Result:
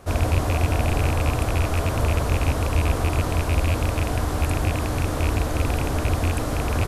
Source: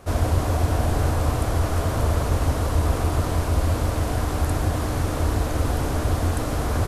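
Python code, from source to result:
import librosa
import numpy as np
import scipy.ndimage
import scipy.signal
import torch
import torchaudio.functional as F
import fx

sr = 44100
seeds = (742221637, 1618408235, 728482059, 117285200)

y = fx.rattle_buzz(x, sr, strikes_db=-19.0, level_db=-18.0)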